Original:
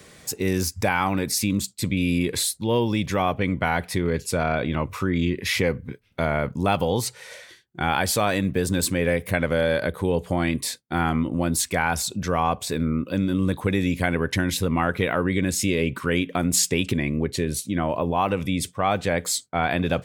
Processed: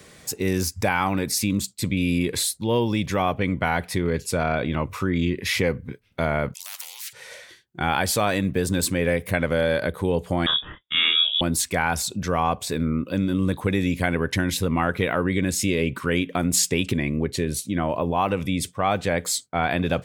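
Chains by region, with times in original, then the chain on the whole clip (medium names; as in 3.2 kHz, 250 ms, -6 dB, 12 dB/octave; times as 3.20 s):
6.54–7.13 s: Chebyshev high-pass 2.3 kHz, order 4 + spectrum-flattening compressor 10:1
10.46–11.41 s: frequency inversion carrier 3.6 kHz + doubling 28 ms -3.5 dB
whole clip: none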